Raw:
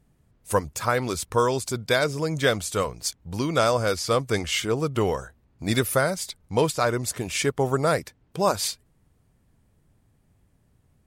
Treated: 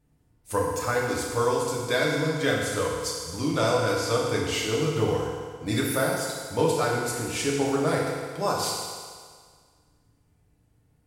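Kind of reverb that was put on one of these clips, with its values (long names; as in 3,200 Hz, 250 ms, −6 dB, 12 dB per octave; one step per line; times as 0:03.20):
feedback delay network reverb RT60 1.8 s, low-frequency decay 0.8×, high-frequency decay 0.95×, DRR −4 dB
level −7 dB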